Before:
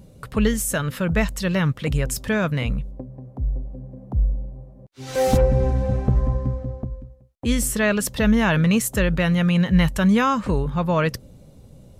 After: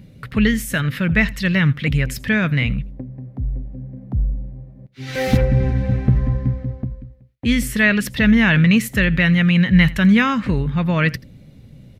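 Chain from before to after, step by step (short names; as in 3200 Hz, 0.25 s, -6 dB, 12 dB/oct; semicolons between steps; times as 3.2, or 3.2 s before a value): ten-band EQ 125 Hz +6 dB, 250 Hz +5 dB, 500 Hz -3 dB, 1000 Hz -5 dB, 2000 Hz +12 dB, 4000 Hz +4 dB, 8000 Hz -7 dB; echo 83 ms -21.5 dB; gain -1 dB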